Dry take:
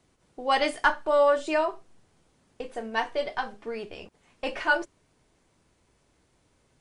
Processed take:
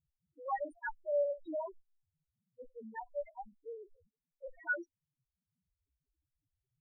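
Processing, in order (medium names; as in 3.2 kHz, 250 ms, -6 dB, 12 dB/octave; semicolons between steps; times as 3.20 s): level-controlled noise filter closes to 480 Hz, open at -20.5 dBFS; reverb removal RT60 1.5 s; loudest bins only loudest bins 1; trim -4.5 dB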